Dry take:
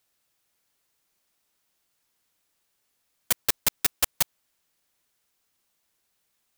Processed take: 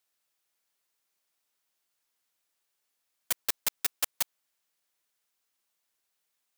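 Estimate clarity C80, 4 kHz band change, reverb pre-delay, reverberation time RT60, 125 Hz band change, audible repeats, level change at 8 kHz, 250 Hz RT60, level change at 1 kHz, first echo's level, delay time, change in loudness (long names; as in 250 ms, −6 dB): no reverb audible, −5.5 dB, no reverb audible, no reverb audible, −14.0 dB, no echo audible, −5.5 dB, no reverb audible, −6.5 dB, no echo audible, no echo audible, −5.5 dB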